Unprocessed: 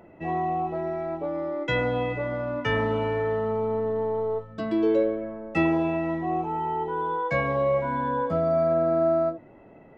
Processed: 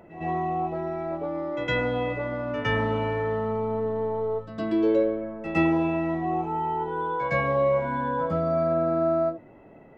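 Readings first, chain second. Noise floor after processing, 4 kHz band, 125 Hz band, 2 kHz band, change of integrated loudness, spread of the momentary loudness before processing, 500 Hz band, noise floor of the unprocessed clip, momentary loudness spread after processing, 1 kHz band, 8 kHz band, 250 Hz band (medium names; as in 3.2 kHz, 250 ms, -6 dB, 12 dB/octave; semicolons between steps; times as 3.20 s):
-50 dBFS, +0.5 dB, +1.0 dB, +0.5 dB, 0.0 dB, 8 LU, -1.0 dB, -50 dBFS, 8 LU, 0.0 dB, no reading, +1.0 dB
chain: reverse echo 110 ms -12.5 dB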